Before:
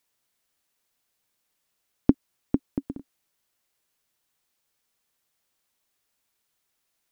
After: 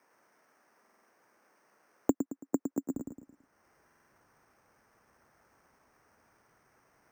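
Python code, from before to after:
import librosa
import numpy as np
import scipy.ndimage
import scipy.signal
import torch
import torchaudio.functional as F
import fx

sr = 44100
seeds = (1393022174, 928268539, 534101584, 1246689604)

y = scipy.signal.sosfilt(scipy.signal.butter(4, 1800.0, 'lowpass', fs=sr, output='sos'), x)
y = np.repeat(y[::6], 6)[:len(y)]
y = fx.highpass(y, sr, hz=fx.steps((0.0, 260.0), (2.94, 41.0)), slope=12)
y = fx.echo_feedback(y, sr, ms=110, feedback_pct=29, wet_db=-7)
y = fx.buffer_glitch(y, sr, at_s=(0.82, 3.86), block=2048, repeats=4)
y = fx.band_squash(y, sr, depth_pct=70)
y = F.gain(torch.from_numpy(y), -2.0).numpy()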